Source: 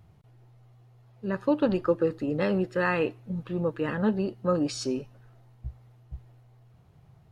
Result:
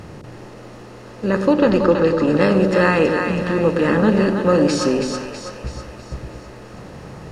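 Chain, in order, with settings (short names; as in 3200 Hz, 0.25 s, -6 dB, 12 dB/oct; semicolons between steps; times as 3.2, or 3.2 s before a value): per-bin compression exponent 0.6; 1.53–2.26 LPF 6400 Hz 12 dB/oct; split-band echo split 580 Hz, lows 0.11 s, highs 0.325 s, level -5 dB; gain +7 dB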